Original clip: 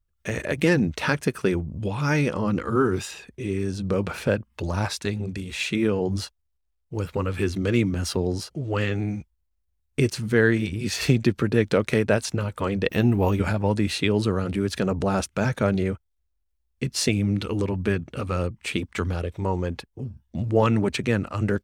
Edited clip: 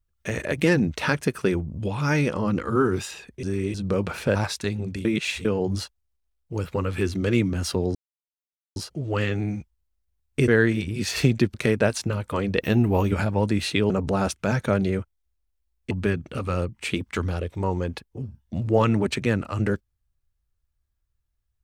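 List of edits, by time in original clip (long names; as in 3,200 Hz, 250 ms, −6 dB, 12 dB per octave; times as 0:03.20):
0:03.43–0:03.74: reverse
0:04.35–0:04.76: remove
0:05.46–0:05.86: reverse
0:08.36: splice in silence 0.81 s
0:10.08–0:10.33: remove
0:11.39–0:11.82: remove
0:14.18–0:14.83: remove
0:16.84–0:17.73: remove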